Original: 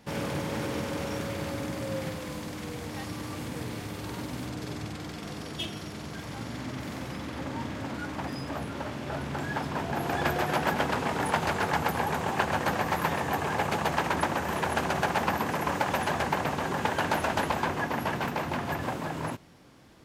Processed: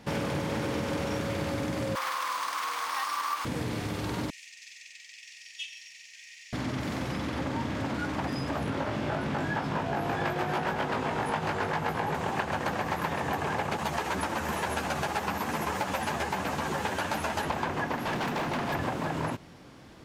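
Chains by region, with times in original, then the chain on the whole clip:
1.95–3.45 s: resonant high-pass 1.1 kHz, resonance Q 6.1 + treble shelf 4.8 kHz +12 dB + careless resampling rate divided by 3×, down filtered, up hold
4.30–6.53 s: rippled Chebyshev high-pass 1.8 kHz, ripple 9 dB + peaking EQ 13 kHz -8.5 dB 0.9 oct + bit-crushed delay 107 ms, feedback 35%, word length 10-bit, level -14 dB
8.66–12.15 s: treble shelf 5.1 kHz -5.5 dB + upward compressor, threshold -32 dBFS + doubling 19 ms -2 dB
13.77–17.45 s: treble shelf 5.4 kHz +9 dB + three-phase chorus
17.96–18.74 s: high-pass 130 Hz + hard clipper -31.5 dBFS
whole clip: compression, threshold -32 dBFS; treble shelf 9.4 kHz -7.5 dB; trim +5 dB

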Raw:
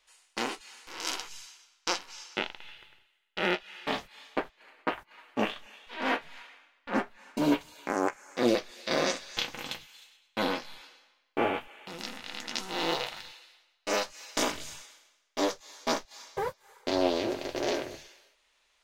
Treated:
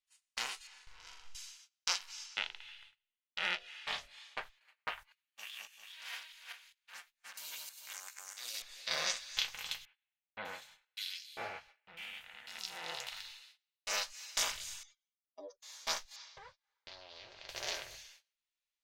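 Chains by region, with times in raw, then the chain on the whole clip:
0.67–1.35 s: RIAA curve playback + compression 3:1, threshold -46 dBFS + flutter echo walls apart 7.1 m, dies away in 0.52 s
2.26–4.42 s: low-pass 10 kHz + de-hum 47.41 Hz, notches 15
5.12–8.62 s: backward echo that repeats 201 ms, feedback 42%, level -0.5 dB + pre-emphasis filter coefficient 0.97
9.85–13.07 s: high-pass 78 Hz 6 dB/octave + peaking EQ 1.1 kHz -6 dB 0.62 oct + bands offset in time lows, highs 600 ms, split 2.3 kHz
14.83–15.62 s: spectral contrast enhancement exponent 3.1 + high-pass 98 Hz + upward expansion, over -43 dBFS
16.16–17.49 s: low-pass 5.4 kHz 24 dB/octave + compression, threshold -38 dBFS
whole clip: amplifier tone stack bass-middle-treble 10-0-10; gate -59 dBFS, range -22 dB

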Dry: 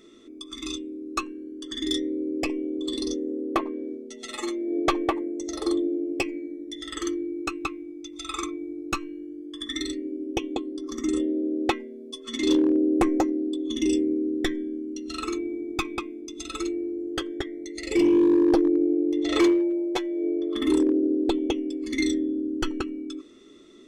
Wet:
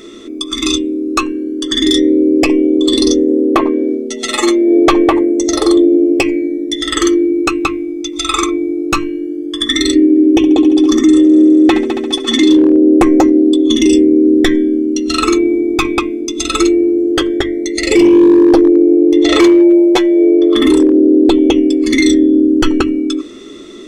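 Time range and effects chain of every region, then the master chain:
9.95–12.57 s: small resonant body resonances 310/1800/3500 Hz, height 9 dB + multi-head delay 69 ms, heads first and third, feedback 73%, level -21.5 dB
whole clip: hum notches 50/100/150/200/250/300 Hz; loudness maximiser +20 dB; trim -1 dB

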